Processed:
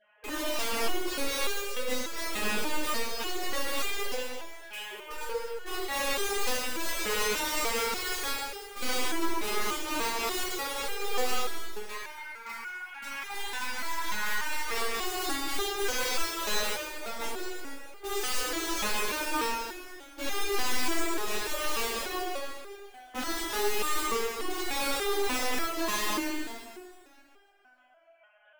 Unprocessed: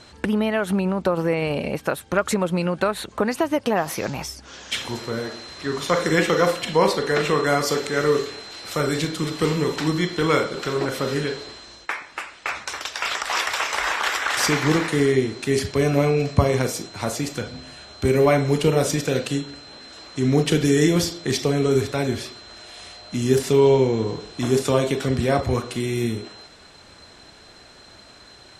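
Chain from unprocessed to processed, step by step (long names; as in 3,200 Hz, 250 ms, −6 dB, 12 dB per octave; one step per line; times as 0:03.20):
three sine waves on the formant tracks
dynamic equaliser 230 Hz, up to +4 dB, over −32 dBFS, Q 1
tube saturation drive 17 dB, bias 0.6
wrap-around overflow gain 25.5 dB
dense smooth reverb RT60 2.1 s, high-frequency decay 0.95×, DRR −7 dB
step-sequenced resonator 3.4 Hz 210–400 Hz
level +6 dB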